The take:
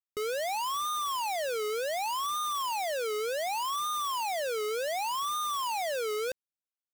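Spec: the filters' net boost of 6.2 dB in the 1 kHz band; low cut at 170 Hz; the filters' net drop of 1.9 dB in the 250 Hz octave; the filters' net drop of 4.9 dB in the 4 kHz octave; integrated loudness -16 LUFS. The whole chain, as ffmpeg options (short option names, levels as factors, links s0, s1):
-af "highpass=170,equalizer=f=250:t=o:g=-5,equalizer=f=1000:t=o:g=8,equalizer=f=4000:t=o:g=-7,volume=3.76"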